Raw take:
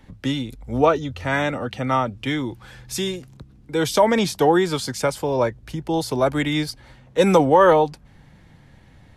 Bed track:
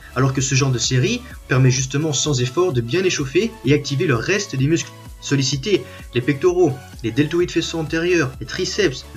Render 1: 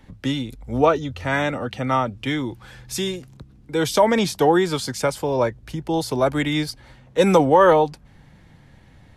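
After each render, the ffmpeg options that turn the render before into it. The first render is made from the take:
-af anull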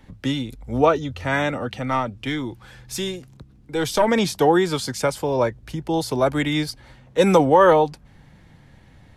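-filter_complex "[0:a]asettb=1/sr,asplit=3[a][b][c];[a]atrim=end=1.794[d];[b]atrim=start=1.79:end=4.08,asetpts=PTS-STARTPTS,afade=t=in:d=0.004:c=qsin,afade=t=out:st=2.286:d=0.004:c=qsin,aeval=exprs='(tanh(2.51*val(0)+0.45)-tanh(0.45))/2.51':c=same[e];[c]atrim=start=4.076[f];[d][e]acrossfade=d=0.004:c1=hsin:c2=qsin[g];[g][f]acrossfade=d=0.004:c1=qsin:c2=hsin"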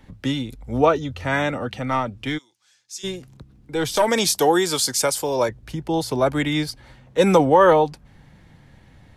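-filter_complex "[0:a]asplit=3[a][b][c];[a]afade=t=out:st=2.37:d=0.02[d];[b]bandpass=f=6.3k:t=q:w=2.2,afade=t=in:st=2.37:d=0.02,afade=t=out:st=3.03:d=0.02[e];[c]afade=t=in:st=3.03:d=0.02[f];[d][e][f]amix=inputs=3:normalize=0,asettb=1/sr,asplit=3[g][h][i];[g]atrim=end=3.964[j];[h]atrim=start=3.96:end=5.49,asetpts=PTS-STARTPTS,afade=t=in:d=0.004:c=qsin,afade=t=out:st=1.526:d=0.004:c=qsin,bass=f=250:g=-7,treble=f=4k:g=12[k];[i]atrim=start=5.486[l];[j][k]acrossfade=d=0.004:c1=hsin:c2=qsin[m];[m][l]acrossfade=d=0.004:c1=qsin:c2=hsin"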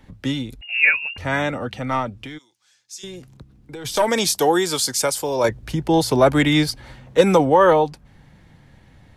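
-filter_complex "[0:a]asettb=1/sr,asplit=3[a][b][c];[a]atrim=end=0.614[d];[b]atrim=start=0.61:end=1.18,asetpts=PTS-STARTPTS,afade=t=in:d=0.004:c=qsin,afade=t=out:st=0.566:d=0.004:c=qsin,lowpass=f=2.5k:t=q:w=0.5098,lowpass=f=2.5k:t=q:w=0.6013,lowpass=f=2.5k:t=q:w=0.9,lowpass=f=2.5k:t=q:w=2.563,afreqshift=-2900[e];[c]atrim=start=1.176[f];[d][e]acrossfade=d=0.004:c1=hsin:c2=qsin[g];[g][f]acrossfade=d=0.004:c1=qsin:c2=hsin,asplit=3[h][i][j];[h]afade=t=out:st=2.19:d=0.02[k];[i]acompressor=threshold=-30dB:ratio=12:attack=3.2:release=140:knee=1:detection=peak,afade=t=in:st=2.19:d=0.02,afade=t=out:st=3.84:d=0.02[l];[j]afade=t=in:st=3.84:d=0.02[m];[k][l][m]amix=inputs=3:normalize=0,asettb=1/sr,asplit=3[n][o][p];[n]atrim=end=5.444[q];[o]atrim=start=5.44:end=7.21,asetpts=PTS-STARTPTS,afade=t=in:d=0.004:c=qsin,afade=t=out:st=1.766:d=0.004:c=qsin,acontrast=45[r];[p]atrim=start=7.206[s];[q][r]acrossfade=d=0.004:c1=hsin:c2=qsin[t];[t][s]acrossfade=d=0.004:c1=qsin:c2=hsin"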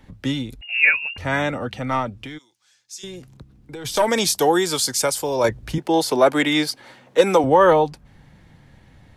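-filter_complex "[0:a]asettb=1/sr,asplit=3[a][b][c];[a]atrim=end=5.784[d];[b]atrim=start=5.78:end=7.44,asetpts=PTS-STARTPTS,afade=t=in:d=0.004:c=qsin,afade=t=out:st=1.656:d=0.004:c=qsin,highpass=290[e];[c]atrim=start=7.436[f];[d][e]acrossfade=d=0.004:c1=hsin:c2=qsin[g];[g][f]acrossfade=d=0.004:c1=qsin:c2=hsin"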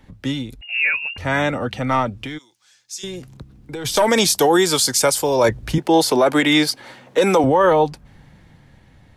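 -af "alimiter=limit=-11.5dB:level=0:latency=1:release=25,dynaudnorm=f=260:g=11:m=5dB"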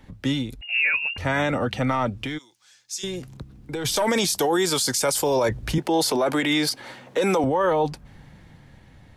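-af "alimiter=limit=-14dB:level=0:latency=1:release=25"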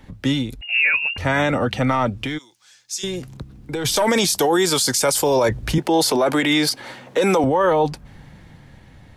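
-af "volume=4dB"

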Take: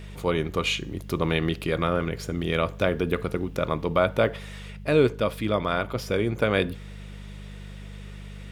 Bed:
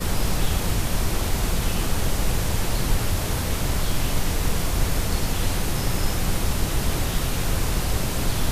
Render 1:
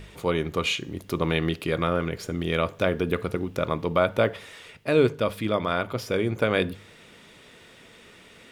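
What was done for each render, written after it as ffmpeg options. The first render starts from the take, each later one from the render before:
-af "bandreject=f=50:t=h:w=4,bandreject=f=100:t=h:w=4,bandreject=f=150:t=h:w=4,bandreject=f=200:t=h:w=4"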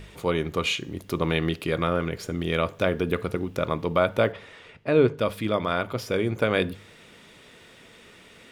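-filter_complex "[0:a]asettb=1/sr,asplit=3[a][b][c];[a]atrim=end=4.324[d];[b]atrim=start=4.32:end=5.18,asetpts=PTS-STARTPTS,afade=t=in:d=0.004:c=qsin,afade=t=out:st=0.856:d=0.004:c=qsin,aemphasis=mode=reproduction:type=75fm[e];[c]atrim=start=5.176[f];[d][e]acrossfade=d=0.004:c1=hsin:c2=qsin[g];[g][f]acrossfade=d=0.004:c1=qsin:c2=hsin"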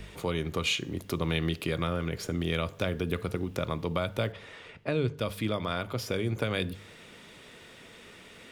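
-filter_complex "[0:a]acrossover=split=160|3000[a][b][c];[b]acompressor=threshold=-30dB:ratio=4[d];[a][d][c]amix=inputs=3:normalize=0"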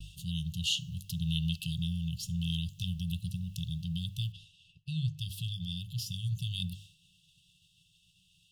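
-af "afftfilt=real='re*(1-between(b*sr/4096,190,2600))':imag='im*(1-between(b*sr/4096,190,2600))':win_size=4096:overlap=0.75,agate=range=-33dB:threshold=-46dB:ratio=3:detection=peak"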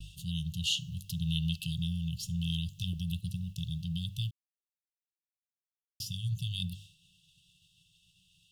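-filter_complex "[0:a]asettb=1/sr,asplit=3[a][b][c];[a]atrim=end=2.934[d];[b]atrim=start=2.93:end=3.77,asetpts=PTS-STARTPTS,afade=t=in:d=0.004:c=qsin,afade=t=out:st=0.836:d=0.004:c=qsin,agate=range=-33dB:threshold=-41dB:ratio=3:release=100:detection=peak[e];[c]atrim=start=3.766[f];[d][e]acrossfade=d=0.004:c1=hsin:c2=qsin[g];[g][f]acrossfade=d=0.004:c1=qsin:c2=hsin,asplit=3[h][i][j];[h]atrim=end=4.31,asetpts=PTS-STARTPTS,afade=t=out:st=4.306:d=0.004:c=hsin[k];[i]atrim=start=4.31:end=6,asetpts=PTS-STARTPTS,volume=0[l];[j]atrim=start=6,asetpts=PTS-STARTPTS,afade=t=in:d=0.004:c=hsin[m];[k][l][m]concat=n=3:v=0:a=1"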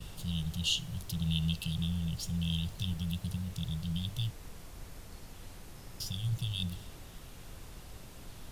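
-filter_complex "[1:a]volume=-25dB[a];[0:a][a]amix=inputs=2:normalize=0"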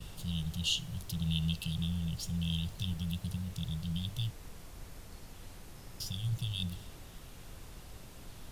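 -af "volume=-1dB"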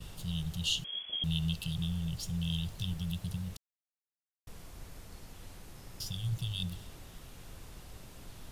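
-filter_complex "[0:a]asettb=1/sr,asplit=3[a][b][c];[a]atrim=end=0.844[d];[b]atrim=start=0.84:end=1.24,asetpts=PTS-STARTPTS,afade=t=in:d=0.004:c=qsin,afade=t=out:st=0.396:d=0.004:c=qsin,lowpass=f=2.9k:t=q:w=0.5098,lowpass=f=2.9k:t=q:w=0.6013,lowpass=f=2.9k:t=q:w=0.9,lowpass=f=2.9k:t=q:w=2.563,afreqshift=-3400[e];[c]atrim=start=1.236[f];[d][e]acrossfade=d=0.004:c1=hsin:c2=qsin[g];[g][f]acrossfade=d=0.004:c1=qsin:c2=hsin,asplit=3[h][i][j];[h]atrim=end=3.57,asetpts=PTS-STARTPTS,afade=t=out:st=3.566:d=0.004:c=hsin[k];[i]atrim=start=3.57:end=4.47,asetpts=PTS-STARTPTS,volume=0[l];[j]atrim=start=4.47,asetpts=PTS-STARTPTS,afade=t=in:d=0.004:c=hsin[m];[k][l][m]concat=n=3:v=0:a=1"

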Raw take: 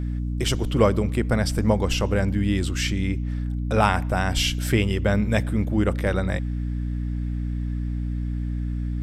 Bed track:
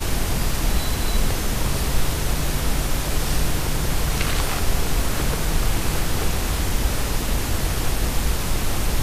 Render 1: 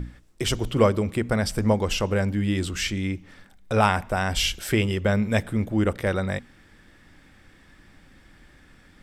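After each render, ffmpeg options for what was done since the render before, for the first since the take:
-af "bandreject=f=60:t=h:w=6,bandreject=f=120:t=h:w=6,bandreject=f=180:t=h:w=6,bandreject=f=240:t=h:w=6,bandreject=f=300:t=h:w=6"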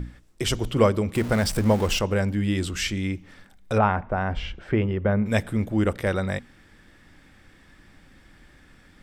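-filter_complex "[0:a]asettb=1/sr,asplit=3[a][b][c];[a]atrim=end=1.154[d];[b]atrim=start=1.15:end=1.99,asetpts=PTS-STARTPTS,afade=t=in:d=0.004:c=qsin,afade=t=out:st=0.836:d=0.004:c=qsin,aeval=exprs='val(0)+0.5*0.0316*sgn(val(0))':c=same[e];[c]atrim=start=1.986[f];[d][e]acrossfade=d=0.004:c1=hsin:c2=qsin[g];[g][f]acrossfade=d=0.004:c1=qsin:c2=hsin,asettb=1/sr,asplit=3[h][i][j];[h]atrim=end=3.784[k];[i]atrim=start=3.78:end=5.26,asetpts=PTS-STARTPTS,afade=t=in:d=0.004:c=qsin,afade=t=out:st=1.476:d=0.004:c=qsin,lowpass=1.5k[l];[j]atrim=start=5.256[m];[k][l]acrossfade=d=0.004:c1=hsin:c2=qsin[n];[n][m]acrossfade=d=0.004:c1=qsin:c2=hsin"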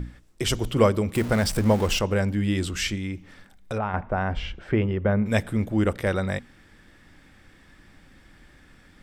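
-filter_complex "[0:a]asettb=1/sr,asplit=3[a][b][c];[a]atrim=end=0.494[d];[b]atrim=start=0.49:end=1.25,asetpts=PTS-STARTPTS,afade=t=in:d=0.004:c=qsin,afade=t=out:st=0.756:d=0.004:c=qsin,highshelf=f=10k:g=5.5[e];[c]atrim=start=1.246[f];[d][e]acrossfade=d=0.004:c1=hsin:c2=qsin[g];[g][f]acrossfade=d=0.004:c1=qsin:c2=hsin,asettb=1/sr,asplit=3[h][i][j];[h]atrim=end=2.954[k];[i]atrim=start=2.95:end=3.94,asetpts=PTS-STARTPTS,afade=t=in:d=0.004:c=qsin,afade=t=out:st=0.986:d=0.004:c=qsin,acompressor=threshold=-29dB:ratio=2:attack=3.2:release=140:knee=1:detection=peak[l];[j]atrim=start=3.936[m];[k][l]acrossfade=d=0.004:c1=hsin:c2=qsin[n];[n][m]acrossfade=d=0.004:c1=qsin:c2=hsin"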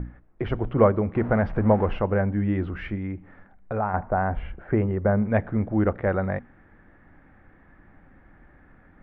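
-af "lowpass=f=1.8k:w=0.5412,lowpass=f=1.8k:w=1.3066,equalizer=f=730:t=o:w=0.55:g=4.5"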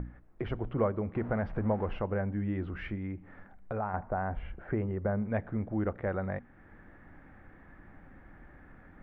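-af "acompressor=threshold=-45dB:ratio=1.5"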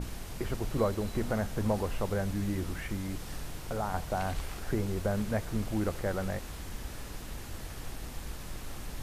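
-filter_complex "[1:a]volume=-19dB[a];[0:a][a]amix=inputs=2:normalize=0"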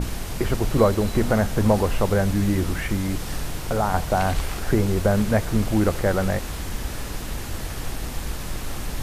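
-af "volume=11dB"

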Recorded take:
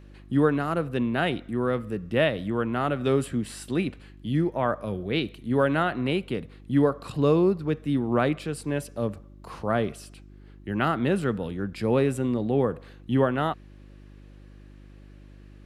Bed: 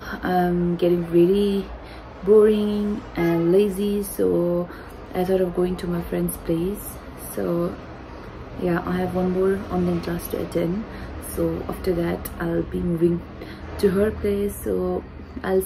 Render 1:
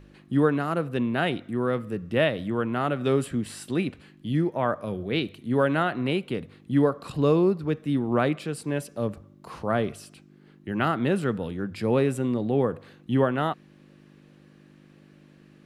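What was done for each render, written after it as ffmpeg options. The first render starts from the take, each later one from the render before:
-af "bandreject=f=50:t=h:w=4,bandreject=f=100:t=h:w=4"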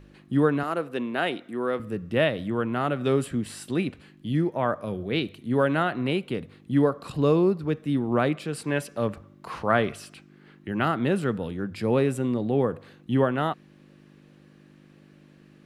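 -filter_complex "[0:a]asettb=1/sr,asplit=3[a][b][c];[a]atrim=end=0.634[d];[b]atrim=start=0.63:end=1.8,asetpts=PTS-STARTPTS,afade=t=in:d=0.004:c=qsin,afade=t=out:st=1.166:d=0.004:c=qsin,highpass=280[e];[c]atrim=start=1.796[f];[d][e]acrossfade=d=0.004:c1=hsin:c2=qsin[g];[g][f]acrossfade=d=0.004:c1=qsin:c2=hsin,asettb=1/sr,asplit=3[h][i][j];[h]atrim=end=8.534[k];[i]atrim=start=8.53:end=10.68,asetpts=PTS-STARTPTS,afade=t=in:d=0.004:c=qsin,afade=t=out:st=2.146:d=0.004:c=qsin,equalizer=f=1.8k:w=0.53:g=7.5[l];[j]atrim=start=10.676[m];[k][l]acrossfade=d=0.004:c1=hsin:c2=qsin[n];[n][m]acrossfade=d=0.004:c1=qsin:c2=hsin"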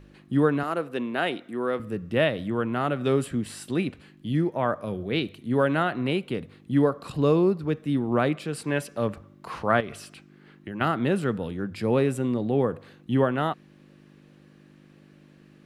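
-filter_complex "[0:a]asettb=1/sr,asplit=3[a][b][c];[a]atrim=end=9.804[d];[b]atrim=start=9.8:end=10.81,asetpts=PTS-STARTPTS,afade=t=in:d=0.004:c=qsin,afade=t=out:st=1.006:d=0.004:c=qsin,acompressor=threshold=-30dB:ratio=6:attack=3.2:release=140:knee=1:detection=peak[e];[c]atrim=start=10.806[f];[d][e]acrossfade=d=0.004:c1=hsin:c2=qsin[g];[g][f]acrossfade=d=0.004:c1=qsin:c2=hsin"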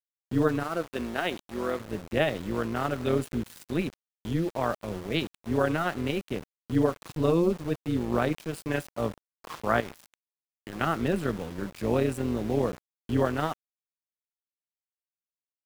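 -af "aeval=exprs='val(0)*gte(abs(val(0)),0.0178)':c=same,tremolo=f=170:d=0.667"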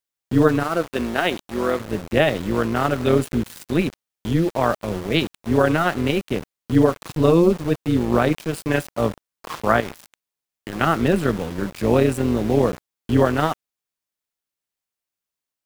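-af "volume=8.5dB,alimiter=limit=-3dB:level=0:latency=1"

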